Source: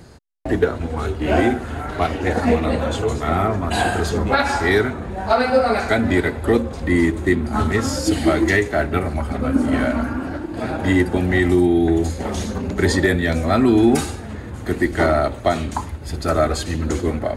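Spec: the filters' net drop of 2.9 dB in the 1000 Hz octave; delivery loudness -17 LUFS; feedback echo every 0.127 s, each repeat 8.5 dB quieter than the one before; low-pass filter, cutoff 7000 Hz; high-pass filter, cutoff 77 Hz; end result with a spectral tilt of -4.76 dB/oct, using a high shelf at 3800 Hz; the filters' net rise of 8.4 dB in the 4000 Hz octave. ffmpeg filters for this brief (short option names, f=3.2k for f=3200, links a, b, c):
-af "highpass=77,lowpass=7k,equalizer=f=1k:t=o:g=-5.5,highshelf=f=3.8k:g=6,equalizer=f=4k:t=o:g=7,aecho=1:1:127|254|381|508:0.376|0.143|0.0543|0.0206,volume=2dB"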